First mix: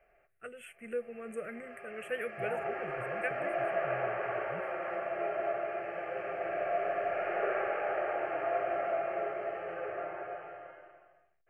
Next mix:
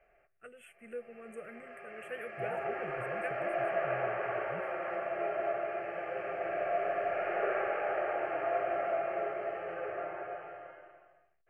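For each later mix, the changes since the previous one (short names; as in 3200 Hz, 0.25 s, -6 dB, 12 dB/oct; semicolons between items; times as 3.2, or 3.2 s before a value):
first voice -6.0 dB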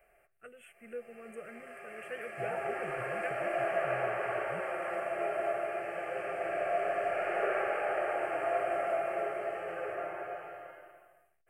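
background: remove air absorption 190 m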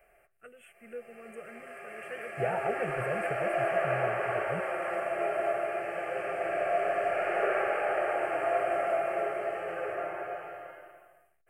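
second voice +9.0 dB; background +3.0 dB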